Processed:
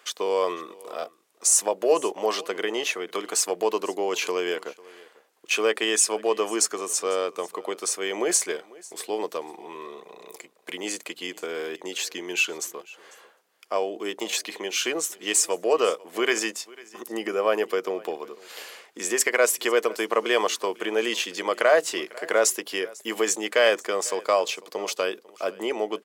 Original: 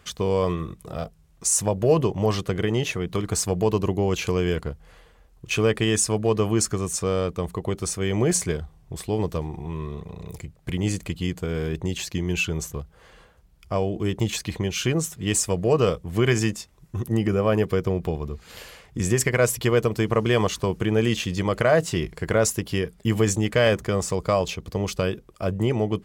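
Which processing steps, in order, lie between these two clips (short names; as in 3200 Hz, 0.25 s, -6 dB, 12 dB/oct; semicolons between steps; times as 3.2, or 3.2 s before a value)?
Bessel high-pass 500 Hz, order 6; echo 0.497 s -22 dB; gain +2.5 dB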